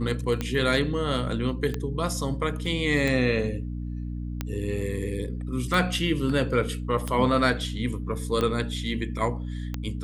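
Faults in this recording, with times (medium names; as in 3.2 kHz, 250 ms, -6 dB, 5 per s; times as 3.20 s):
hum 60 Hz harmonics 5 -32 dBFS
tick 45 rpm -14 dBFS
2.66 s: dropout 2.3 ms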